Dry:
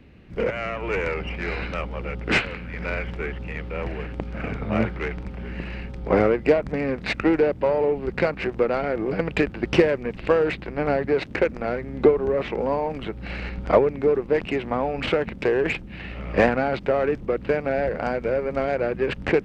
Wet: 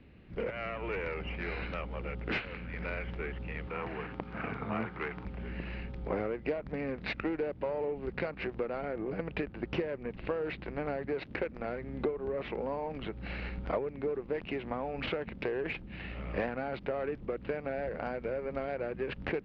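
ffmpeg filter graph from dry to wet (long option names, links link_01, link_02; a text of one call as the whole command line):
ffmpeg -i in.wav -filter_complex "[0:a]asettb=1/sr,asplit=3[link_01][link_02][link_03];[link_01]atrim=end=3.674[link_04];[link_02]atrim=start=3.67:end=5.25,asetpts=PTS-STARTPTS,afade=type=in:duration=0.004:curve=qsin,afade=type=out:start_time=1.576:duration=0.004:curve=qsin,highpass=97,equalizer=frequency=1100:width=1.2:gain=7.5,bandreject=frequency=570:width=7.5[link_05];[link_03]atrim=start=5.246[link_06];[link_04][link_05]acrossfade=duration=0.004:curve1=hsin:curve2=qsin[link_07];[link_07][link_06]acrossfade=duration=0.004:curve1=qsin:curve2=hsin,asettb=1/sr,asplit=3[link_08][link_09][link_10];[link_08]atrim=end=8.704[link_11];[link_09]atrim=start=8.7:end=10.44,asetpts=PTS-STARTPTS,afade=type=in:duration=0.004:curve=qsin,afade=type=out:start_time=1.736:duration=0.004:curve=qsin,lowpass=frequency=1800:poles=1,aemphasis=mode=production:type=50fm[link_12];[link_10]atrim=start=10.436[link_13];[link_11][link_12]acrossfade=duration=0.004:curve1=hsin:curve2=qsin[link_14];[link_14][link_13]acrossfade=duration=0.004:curve1=qsin:curve2=hsin,lowpass=frequency=4500:width=0.5412,lowpass=frequency=4500:width=1.3066,acompressor=threshold=-27dB:ratio=2.5,volume=-6.5dB" out.wav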